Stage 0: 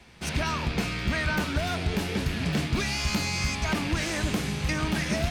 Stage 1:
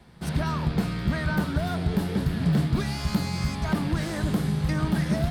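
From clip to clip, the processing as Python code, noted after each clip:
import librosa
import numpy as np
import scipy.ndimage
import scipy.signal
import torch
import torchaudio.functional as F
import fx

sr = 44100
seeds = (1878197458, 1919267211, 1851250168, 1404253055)

y = fx.graphic_eq_15(x, sr, hz=(160, 2500, 6300), db=(8, -11, -10))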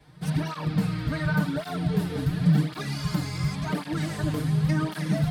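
y = x + 0.7 * np.pad(x, (int(6.6 * sr / 1000.0), 0))[:len(x)]
y = fx.flanger_cancel(y, sr, hz=0.91, depth_ms=5.7)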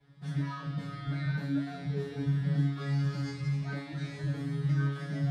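y = fx.air_absorb(x, sr, metres=75.0)
y = fx.comb_fb(y, sr, f0_hz=140.0, decay_s=0.51, harmonics='all', damping=0.0, mix_pct=100)
y = y * 10.0 ** (5.5 / 20.0)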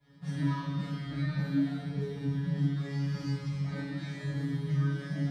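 y = fx.rider(x, sr, range_db=10, speed_s=2.0)
y = fx.rev_fdn(y, sr, rt60_s=1.1, lf_ratio=1.3, hf_ratio=1.0, size_ms=33.0, drr_db=-5.5)
y = y * 10.0 ** (-7.5 / 20.0)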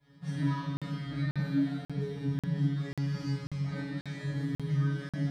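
y = fx.buffer_crackle(x, sr, first_s=0.77, period_s=0.54, block=2048, kind='zero')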